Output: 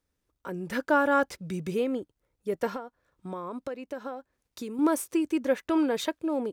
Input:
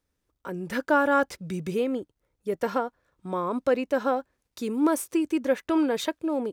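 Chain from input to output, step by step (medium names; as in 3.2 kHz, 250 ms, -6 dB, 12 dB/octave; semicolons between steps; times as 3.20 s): 2.67–4.79 s: compression 6:1, threshold -32 dBFS, peak gain reduction 13.5 dB; trim -1.5 dB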